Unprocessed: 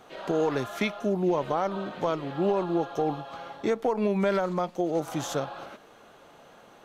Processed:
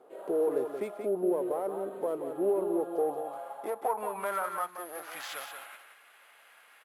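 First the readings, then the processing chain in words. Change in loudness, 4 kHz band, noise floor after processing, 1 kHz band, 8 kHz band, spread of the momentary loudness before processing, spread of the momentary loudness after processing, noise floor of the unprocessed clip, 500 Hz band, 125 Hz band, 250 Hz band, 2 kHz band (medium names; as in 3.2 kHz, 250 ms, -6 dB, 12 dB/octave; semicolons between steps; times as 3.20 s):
-4.5 dB, -8.0 dB, -59 dBFS, -4.0 dB, -3.0 dB, 7 LU, 11 LU, -54 dBFS, -3.0 dB, -19.5 dB, -7.5 dB, -6.0 dB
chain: self-modulated delay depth 0.062 ms; bass shelf 290 Hz -11.5 dB; in parallel at -10 dB: wavefolder -27.5 dBFS; on the sum: careless resampling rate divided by 4×, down none, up zero stuff; on a send: delay 179 ms -7.5 dB; on the sum: band-pass sweep 420 Hz -> 2.1 kHz, 2.78–5.31 s; trim +2.5 dB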